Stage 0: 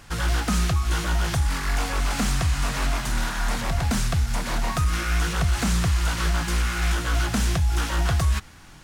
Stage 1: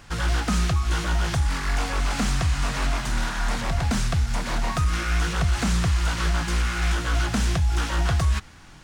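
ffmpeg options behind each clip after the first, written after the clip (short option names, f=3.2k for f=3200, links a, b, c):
-af "equalizer=f=13k:w=1.1:g=-9.5"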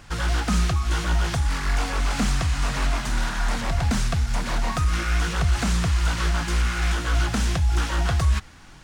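-af "aphaser=in_gain=1:out_gain=1:delay=4.9:decay=0.2:speed=1.8:type=triangular"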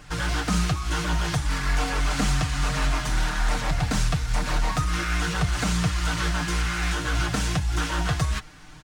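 -af "aecho=1:1:6.6:0.65,volume=-1dB"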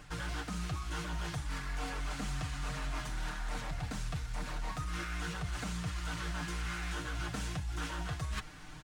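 -af "equalizer=f=5.4k:t=o:w=0.77:g=-2,areverse,acompressor=threshold=-32dB:ratio=6,areverse,volume=-3dB"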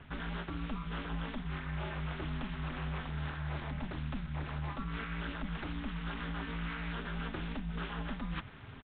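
-af "aresample=8000,aresample=44100,aeval=exprs='val(0)*sin(2*PI*110*n/s)':c=same,volume=2dB"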